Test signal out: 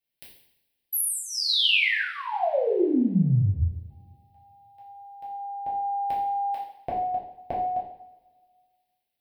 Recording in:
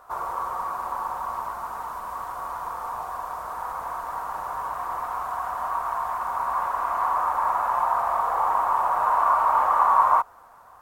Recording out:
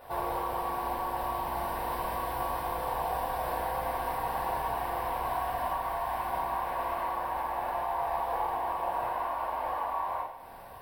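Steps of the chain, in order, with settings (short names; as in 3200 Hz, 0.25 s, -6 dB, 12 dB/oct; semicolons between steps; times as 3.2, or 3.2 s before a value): compressor 10:1, threshold -31 dBFS; fixed phaser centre 3000 Hz, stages 4; two-slope reverb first 0.69 s, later 2 s, from -21 dB, DRR -7 dB; gain +4.5 dB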